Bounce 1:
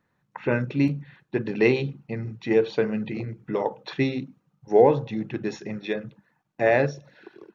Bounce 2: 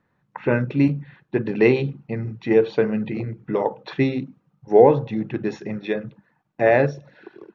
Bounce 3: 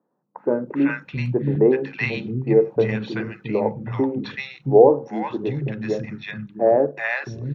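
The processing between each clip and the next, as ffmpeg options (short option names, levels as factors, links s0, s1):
-af "lowpass=f=2500:p=1,volume=1.58"
-filter_complex "[0:a]acrossover=split=210|1000[s0][s1][s2];[s2]adelay=380[s3];[s0]adelay=670[s4];[s4][s1][s3]amix=inputs=3:normalize=0,volume=1.19"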